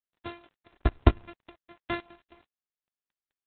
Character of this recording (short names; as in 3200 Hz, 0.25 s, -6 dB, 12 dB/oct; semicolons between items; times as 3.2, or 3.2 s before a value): a buzz of ramps at a fixed pitch in blocks of 128 samples; tremolo saw up 4.5 Hz, depth 80%; a quantiser's noise floor 10-bit, dither none; Opus